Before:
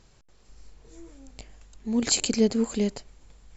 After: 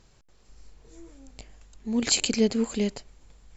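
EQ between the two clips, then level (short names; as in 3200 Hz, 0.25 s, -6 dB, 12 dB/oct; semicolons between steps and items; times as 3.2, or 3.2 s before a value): dynamic EQ 2700 Hz, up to +5 dB, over -45 dBFS, Q 1.1; -1.0 dB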